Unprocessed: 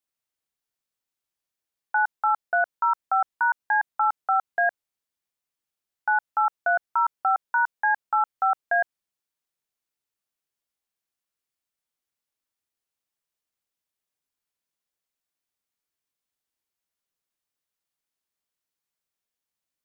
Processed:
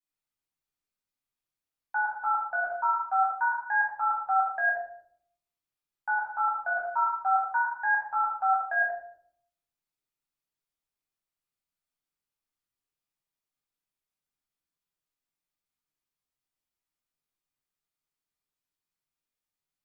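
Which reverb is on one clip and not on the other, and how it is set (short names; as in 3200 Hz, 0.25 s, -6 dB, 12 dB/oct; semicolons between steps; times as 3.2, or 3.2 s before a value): shoebox room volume 980 m³, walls furnished, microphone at 8.6 m; gain -13 dB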